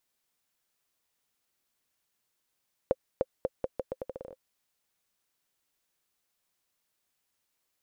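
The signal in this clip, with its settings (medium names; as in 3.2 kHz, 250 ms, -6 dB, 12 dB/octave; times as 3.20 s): bouncing ball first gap 0.30 s, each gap 0.8, 523 Hz, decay 39 ms -12.5 dBFS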